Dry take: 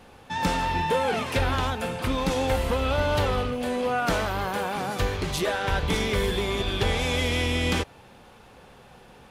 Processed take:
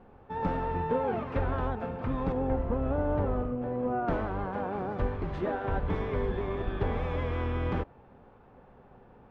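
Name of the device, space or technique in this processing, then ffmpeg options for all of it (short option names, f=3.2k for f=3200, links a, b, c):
octave pedal: -filter_complex "[0:a]asplit=2[a][b];[b]asetrate=22050,aresample=44100,atempo=2,volume=-5dB[c];[a][c]amix=inputs=2:normalize=0,asettb=1/sr,asplit=3[d][e][f];[d]atrim=end=2.324[g];[e]atrim=start=2.32:end=4.08,asetpts=PTS-STARTPTS,afade=t=in:d=0.004:c=qsin,afade=t=out:st=1.756:d=0.004:c=qsin,lowpass=f=1.3k:p=1[h];[f]atrim=start=4.076[i];[g][h]acrossfade=d=0.004:c1=hsin:c2=qsin[j];[j][i]acrossfade=d=0.004:c1=qsin:c2=hsin,lowpass=1.2k,volume=-5dB"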